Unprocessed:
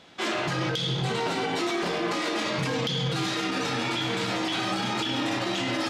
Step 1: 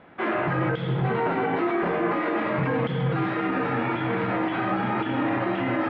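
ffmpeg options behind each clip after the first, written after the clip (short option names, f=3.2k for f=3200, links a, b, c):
-af "lowpass=f=2k:w=0.5412,lowpass=f=2k:w=1.3066,volume=4dB"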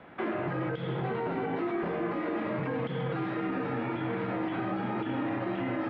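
-filter_complex "[0:a]acrossover=split=240|620|3400[a][b][c][d];[a]acompressor=threshold=-38dB:ratio=4[e];[b]acompressor=threshold=-34dB:ratio=4[f];[c]acompressor=threshold=-40dB:ratio=4[g];[d]acompressor=threshold=-58dB:ratio=4[h];[e][f][g][h]amix=inputs=4:normalize=0"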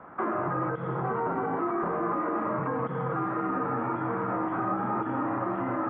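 -af "lowpass=f=1.2k:t=q:w=3.5"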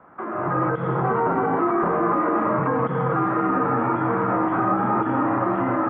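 -af "dynaudnorm=f=280:g=3:m=11.5dB,volume=-3.5dB"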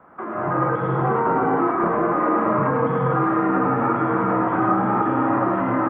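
-af "aecho=1:1:105:0.631"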